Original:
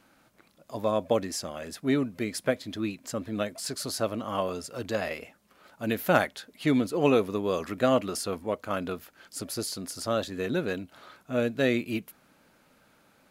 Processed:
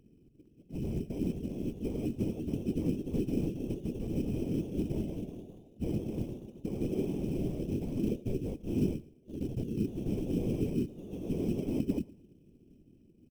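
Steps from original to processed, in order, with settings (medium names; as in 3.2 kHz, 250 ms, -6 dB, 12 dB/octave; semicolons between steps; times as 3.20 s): spectral gate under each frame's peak -15 dB strong; tilt EQ -4.5 dB/octave; integer overflow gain 18 dB; four-pole ladder low-pass 350 Hz, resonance 45%; in parallel at -9 dB: sample-and-hold 16×; on the sum: whisper effect; short-mantissa float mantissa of 4-bit; on a send: feedback delay 114 ms, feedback 34%, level -21 dB; on the sum: ever faster or slower copies 456 ms, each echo +1 st, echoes 3, each echo -6 dB; trim -1.5 dB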